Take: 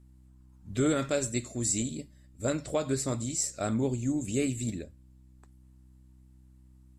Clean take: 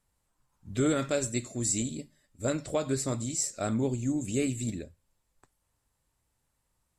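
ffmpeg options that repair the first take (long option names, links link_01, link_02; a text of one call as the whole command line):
ffmpeg -i in.wav -af "bandreject=frequency=63.7:width_type=h:width=4,bandreject=frequency=127.4:width_type=h:width=4,bandreject=frequency=191.1:width_type=h:width=4,bandreject=frequency=254.8:width_type=h:width=4,bandreject=frequency=318.5:width_type=h:width=4" out.wav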